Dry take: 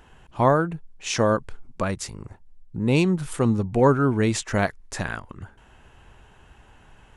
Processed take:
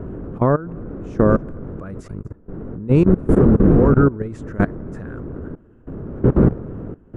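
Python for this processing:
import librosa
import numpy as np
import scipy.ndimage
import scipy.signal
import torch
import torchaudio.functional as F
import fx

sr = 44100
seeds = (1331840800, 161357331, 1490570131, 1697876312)

y = fx.dmg_wind(x, sr, seeds[0], corner_hz=340.0, level_db=-24.0)
y = y + 10.0 ** (-23.5 / 20.0) * np.pad(y, (int(240 * sr / 1000.0), 0))[:len(y)]
y = fx.level_steps(y, sr, step_db=19)
y = fx.curve_eq(y, sr, hz=(440.0, 810.0, 1400.0, 2100.0, 4100.0, 6400.0), db=(0, -11, -3, -14, -23, -20))
y = F.gain(torch.from_numpy(y), 8.0).numpy()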